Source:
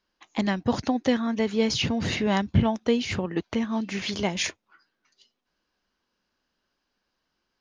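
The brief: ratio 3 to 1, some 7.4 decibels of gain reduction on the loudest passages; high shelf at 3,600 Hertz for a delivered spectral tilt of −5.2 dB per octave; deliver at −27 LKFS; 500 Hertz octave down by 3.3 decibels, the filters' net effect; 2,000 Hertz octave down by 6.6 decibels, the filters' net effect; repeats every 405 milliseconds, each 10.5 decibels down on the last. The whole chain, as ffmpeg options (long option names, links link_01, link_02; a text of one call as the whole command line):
ffmpeg -i in.wav -af "equalizer=frequency=500:width_type=o:gain=-3.5,equalizer=frequency=2000:width_type=o:gain=-7,highshelf=frequency=3600:gain=-3,acompressor=threshold=-25dB:ratio=3,aecho=1:1:405|810|1215:0.299|0.0896|0.0269,volume=3dB" out.wav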